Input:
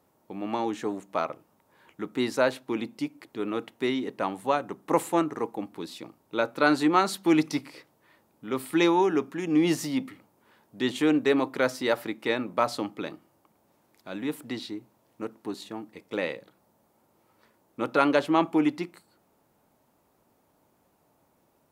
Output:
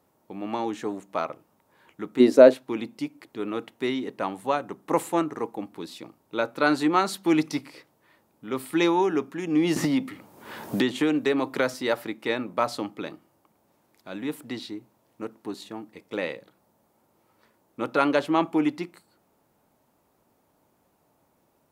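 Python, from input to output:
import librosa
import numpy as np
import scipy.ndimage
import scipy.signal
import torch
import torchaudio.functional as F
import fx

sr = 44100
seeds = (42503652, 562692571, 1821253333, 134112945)

y = fx.spec_box(x, sr, start_s=2.2, length_s=0.34, low_hz=220.0, high_hz=730.0, gain_db=12)
y = fx.band_squash(y, sr, depth_pct=100, at=(9.76, 11.74))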